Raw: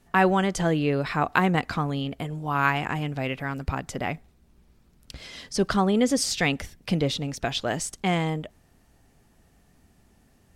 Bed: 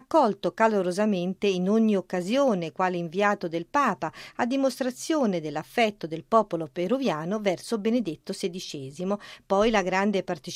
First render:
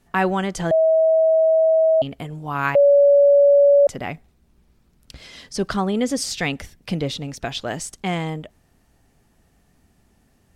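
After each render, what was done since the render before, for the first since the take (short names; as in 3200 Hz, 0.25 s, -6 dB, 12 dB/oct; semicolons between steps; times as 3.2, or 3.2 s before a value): 0.71–2.02 bleep 643 Hz -12.5 dBFS; 2.75–3.87 bleep 568 Hz -9.5 dBFS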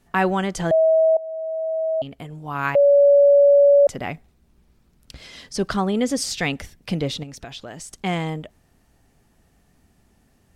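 1.17–3.08 fade in linear, from -18.5 dB; 7.23–7.91 compressor 3:1, threshold -35 dBFS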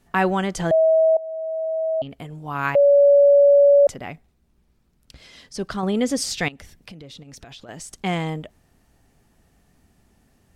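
1.65–2.1 air absorption 81 m; 3.94–5.83 gain -5 dB; 6.48–7.69 compressor 12:1, threshold -37 dBFS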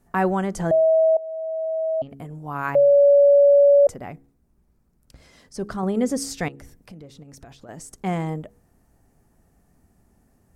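bell 3300 Hz -12.5 dB 1.5 oct; de-hum 68.77 Hz, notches 7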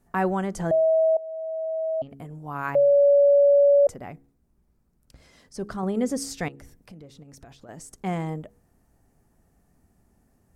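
gain -3 dB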